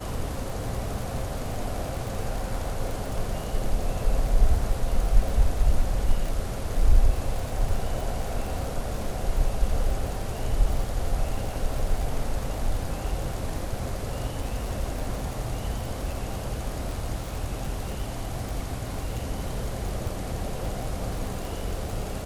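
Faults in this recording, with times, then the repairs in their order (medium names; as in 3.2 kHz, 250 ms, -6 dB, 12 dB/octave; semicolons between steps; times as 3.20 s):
crackle 47 per s -30 dBFS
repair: de-click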